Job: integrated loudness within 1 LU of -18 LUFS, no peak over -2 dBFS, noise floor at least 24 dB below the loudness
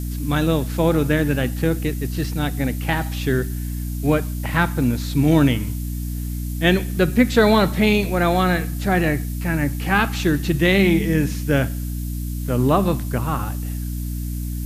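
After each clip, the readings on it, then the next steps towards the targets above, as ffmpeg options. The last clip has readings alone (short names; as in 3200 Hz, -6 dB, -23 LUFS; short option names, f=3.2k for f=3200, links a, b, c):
hum 60 Hz; harmonics up to 300 Hz; hum level -24 dBFS; noise floor -27 dBFS; noise floor target -45 dBFS; loudness -20.5 LUFS; peak -3.0 dBFS; loudness target -18.0 LUFS
-> -af "bandreject=f=60:t=h:w=4,bandreject=f=120:t=h:w=4,bandreject=f=180:t=h:w=4,bandreject=f=240:t=h:w=4,bandreject=f=300:t=h:w=4"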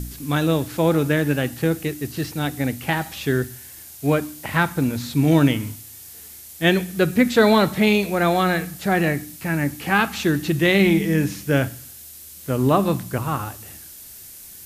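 hum none; noise floor -41 dBFS; noise floor target -45 dBFS
-> -af "afftdn=nr=6:nf=-41"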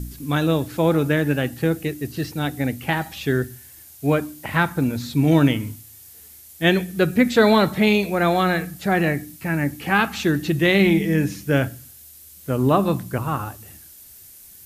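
noise floor -45 dBFS; loudness -21.0 LUFS; peak -3.5 dBFS; loudness target -18.0 LUFS
-> -af "volume=3dB,alimiter=limit=-2dB:level=0:latency=1"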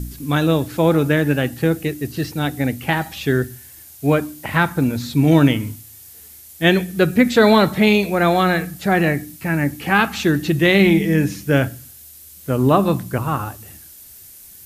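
loudness -18.0 LUFS; peak -2.0 dBFS; noise floor -42 dBFS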